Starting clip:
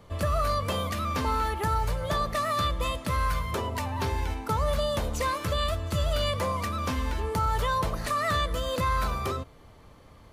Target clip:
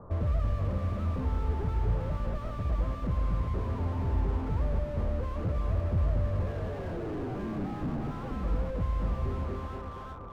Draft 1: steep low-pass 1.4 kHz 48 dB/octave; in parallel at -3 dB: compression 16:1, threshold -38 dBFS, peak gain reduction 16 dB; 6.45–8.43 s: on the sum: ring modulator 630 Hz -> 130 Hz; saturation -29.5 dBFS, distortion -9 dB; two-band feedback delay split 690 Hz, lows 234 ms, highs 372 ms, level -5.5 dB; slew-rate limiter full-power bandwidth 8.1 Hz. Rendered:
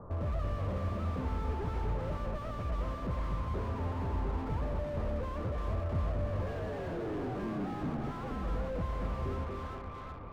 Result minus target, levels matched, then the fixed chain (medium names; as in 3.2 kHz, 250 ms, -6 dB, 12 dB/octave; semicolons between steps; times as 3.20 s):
compression: peak gain reduction +8.5 dB; saturation: distortion +12 dB
steep low-pass 1.4 kHz 48 dB/octave; in parallel at -3 dB: compression 16:1, threshold -29 dBFS, peak gain reduction 7.5 dB; 6.45–8.43 s: on the sum: ring modulator 630 Hz -> 130 Hz; saturation -17.5 dBFS, distortion -22 dB; two-band feedback delay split 690 Hz, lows 234 ms, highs 372 ms, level -5.5 dB; slew-rate limiter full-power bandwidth 8.1 Hz